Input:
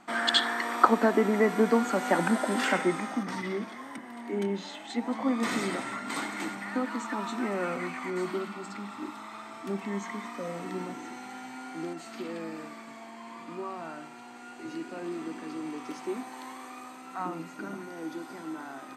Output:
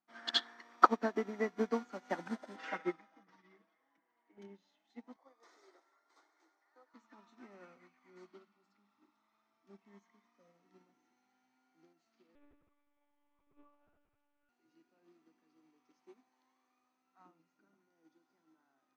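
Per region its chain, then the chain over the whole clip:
2.56–4.38 tone controls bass -8 dB, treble -10 dB + comb 6.2 ms, depth 84%
5.16–6.94 elliptic high-pass 340 Hz, stop band 50 dB + bell 2700 Hz -11.5 dB 0.68 oct
12.35–14.49 low shelf 410 Hz +6.5 dB + monotone LPC vocoder at 8 kHz 290 Hz
whole clip: resonant high shelf 7100 Hz -6.5 dB, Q 3; upward expander 2.5:1, over -37 dBFS; gain -3 dB

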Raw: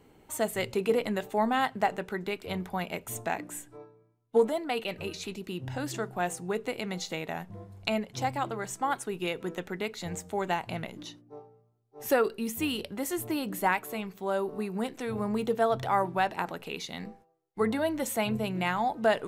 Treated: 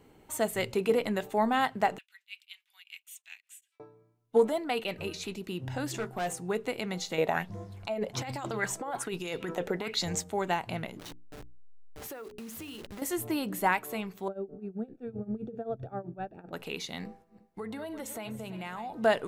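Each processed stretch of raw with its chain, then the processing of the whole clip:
1.98–3.8 ladder high-pass 2400 Hz, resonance 50% + beating tremolo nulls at 5.2 Hz
5.93–6.33 overloaded stage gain 28.5 dB + doubler 13 ms -8 dB
7.18–10.24 negative-ratio compressor -35 dBFS + LFO bell 1.2 Hz 480–6700 Hz +13 dB
10.99–13.02 level-crossing sampler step -38 dBFS + notches 60/120/180/240/300/360/420 Hz + compressor 20:1, threshold -38 dBFS
14.28–16.53 running mean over 43 samples + tremolo 7.7 Hz, depth 89%
17.05–18.93 regenerating reverse delay 0.169 s, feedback 57%, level -13.5 dB + compressor 4:1, threshold -37 dBFS
whole clip: dry

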